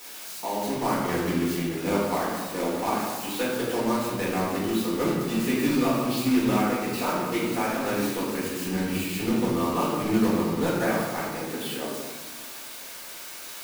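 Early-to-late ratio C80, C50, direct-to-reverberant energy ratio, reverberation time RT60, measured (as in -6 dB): 2.0 dB, 0.0 dB, -9.0 dB, 1.5 s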